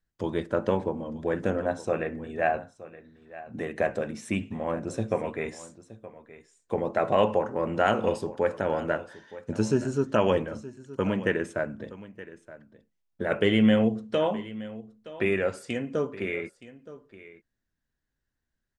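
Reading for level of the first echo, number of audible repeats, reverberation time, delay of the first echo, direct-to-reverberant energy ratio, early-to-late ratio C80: -17.0 dB, 1, no reverb, 921 ms, no reverb, no reverb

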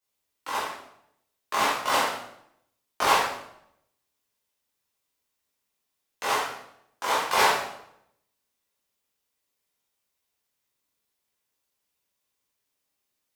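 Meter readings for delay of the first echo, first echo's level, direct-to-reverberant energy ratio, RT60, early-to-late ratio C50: no echo, no echo, -9.5 dB, 0.75 s, 1.0 dB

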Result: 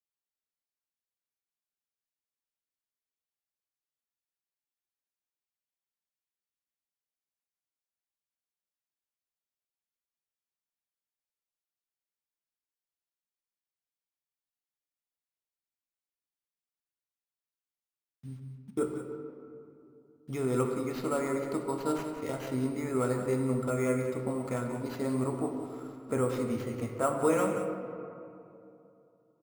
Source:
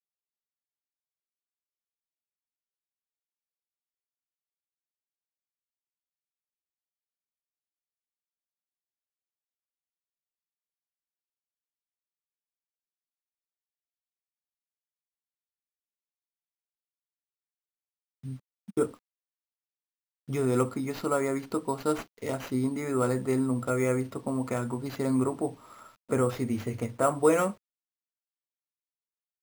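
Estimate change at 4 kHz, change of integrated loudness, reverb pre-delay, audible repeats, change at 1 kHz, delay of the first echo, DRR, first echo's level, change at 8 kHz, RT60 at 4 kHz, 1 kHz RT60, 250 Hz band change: -3.5 dB, -3.0 dB, 4 ms, 1, -3.0 dB, 182 ms, 3.0 dB, -10.0 dB, -3.5 dB, 1.3 s, 2.6 s, -2.5 dB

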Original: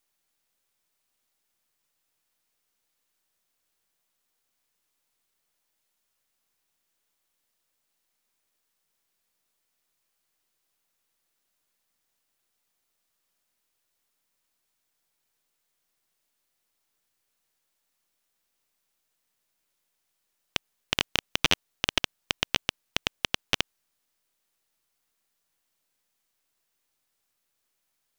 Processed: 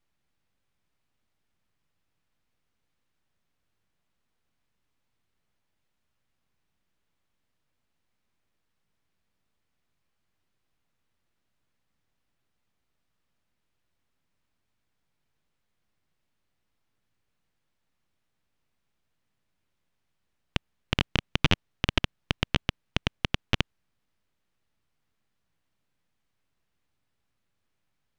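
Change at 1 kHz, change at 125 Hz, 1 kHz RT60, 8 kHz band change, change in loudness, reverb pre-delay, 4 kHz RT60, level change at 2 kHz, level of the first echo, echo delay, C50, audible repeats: 0.0 dB, +12.0 dB, no reverb, -9.5 dB, -1.0 dB, no reverb, no reverb, -1.5 dB, no echo, no echo, no reverb, no echo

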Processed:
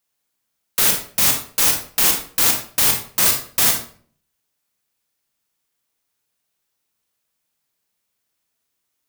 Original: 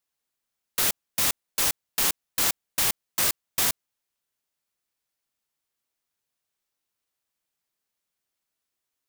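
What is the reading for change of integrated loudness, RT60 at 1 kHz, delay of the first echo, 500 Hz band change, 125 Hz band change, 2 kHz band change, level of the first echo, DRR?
+8.5 dB, 0.45 s, no echo, +7.0 dB, +8.5 dB, +7.0 dB, no echo, 3.0 dB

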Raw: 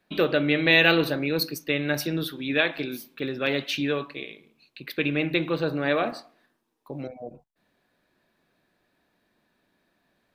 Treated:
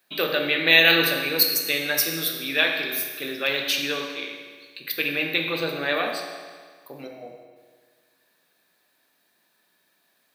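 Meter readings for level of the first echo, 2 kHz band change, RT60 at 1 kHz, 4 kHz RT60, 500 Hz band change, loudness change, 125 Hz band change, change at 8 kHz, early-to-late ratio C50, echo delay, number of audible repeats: no echo, +3.5 dB, 1.7 s, 1.5 s, -1.5 dB, +3.0 dB, -7.5 dB, +12.0 dB, 4.5 dB, no echo, no echo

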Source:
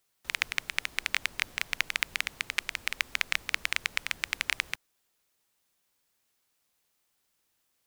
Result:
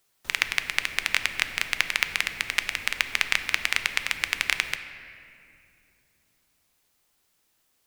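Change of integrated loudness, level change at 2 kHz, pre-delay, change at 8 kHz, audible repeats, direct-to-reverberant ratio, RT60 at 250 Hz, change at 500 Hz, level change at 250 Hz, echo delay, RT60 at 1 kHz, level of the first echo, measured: +5.5 dB, +5.5 dB, 3 ms, +5.0 dB, no echo, 8.5 dB, 4.0 s, +6.0 dB, +6.0 dB, no echo, 2.2 s, no echo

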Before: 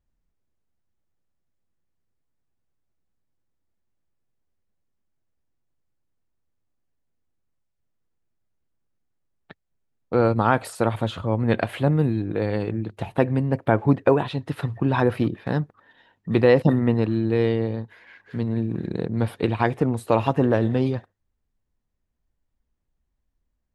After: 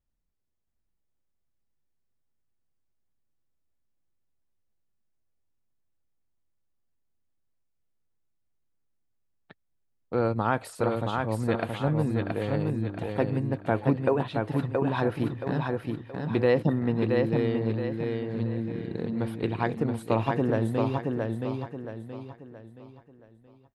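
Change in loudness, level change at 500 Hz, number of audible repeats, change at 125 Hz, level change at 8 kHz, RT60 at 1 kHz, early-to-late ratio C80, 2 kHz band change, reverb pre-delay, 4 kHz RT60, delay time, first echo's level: -5.5 dB, -4.5 dB, 4, -5.0 dB, -4.5 dB, no reverb, no reverb, -4.5 dB, no reverb, no reverb, 674 ms, -3.5 dB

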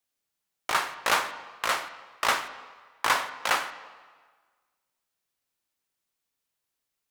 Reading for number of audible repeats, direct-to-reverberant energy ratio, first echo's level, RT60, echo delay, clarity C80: no echo, 10.5 dB, no echo, 1.5 s, no echo, 13.5 dB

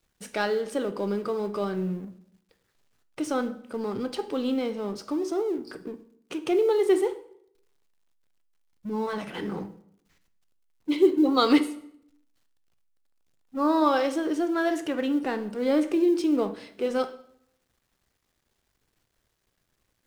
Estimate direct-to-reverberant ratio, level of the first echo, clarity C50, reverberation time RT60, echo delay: 10.0 dB, no echo, 14.0 dB, 0.65 s, no echo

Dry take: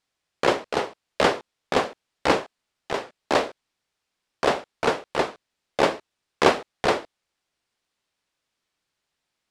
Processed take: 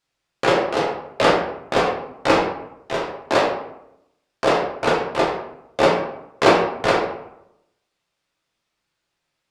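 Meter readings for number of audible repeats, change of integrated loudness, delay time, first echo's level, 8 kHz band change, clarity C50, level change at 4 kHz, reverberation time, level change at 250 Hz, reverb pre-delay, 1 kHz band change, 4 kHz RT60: no echo, +4.5 dB, no echo, no echo, +1.5 dB, 4.5 dB, +3.0 dB, 0.80 s, +5.0 dB, 5 ms, +5.0 dB, 0.45 s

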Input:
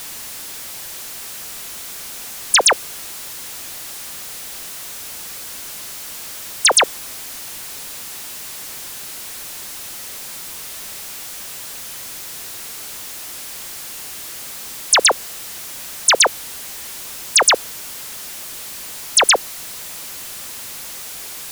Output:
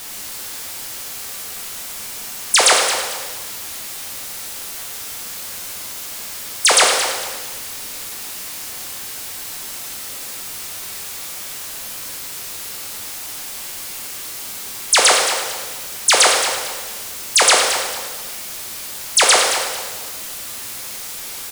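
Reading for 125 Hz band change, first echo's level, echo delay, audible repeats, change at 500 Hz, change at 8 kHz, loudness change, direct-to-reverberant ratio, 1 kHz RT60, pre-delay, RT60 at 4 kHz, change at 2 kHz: +1.5 dB, -10.0 dB, 223 ms, 2, +2.0 dB, +2.0 dB, +2.0 dB, -1.0 dB, 1.4 s, 5 ms, 1.4 s, +2.0 dB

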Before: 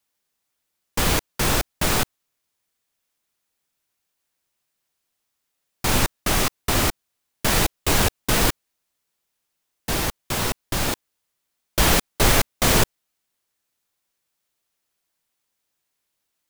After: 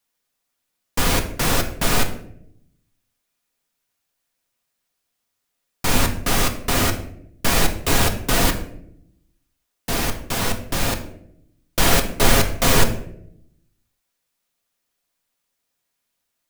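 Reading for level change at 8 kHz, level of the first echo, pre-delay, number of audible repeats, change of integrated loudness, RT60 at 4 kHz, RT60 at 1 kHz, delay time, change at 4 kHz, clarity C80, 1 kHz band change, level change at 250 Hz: +0.5 dB, no echo, 4 ms, no echo, +1.0 dB, 0.40 s, 0.60 s, no echo, +1.0 dB, 14.0 dB, +1.5 dB, +2.0 dB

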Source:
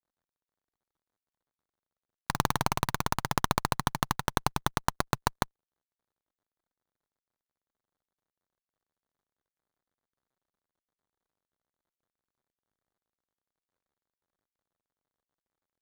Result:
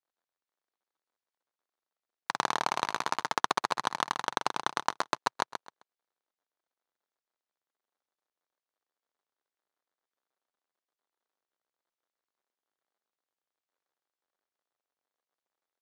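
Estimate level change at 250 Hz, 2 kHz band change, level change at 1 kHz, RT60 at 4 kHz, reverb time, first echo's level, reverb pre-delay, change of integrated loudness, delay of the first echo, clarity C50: -8.5 dB, +0.5 dB, +0.5 dB, no reverb, no reverb, -8.0 dB, no reverb, -1.0 dB, 131 ms, no reverb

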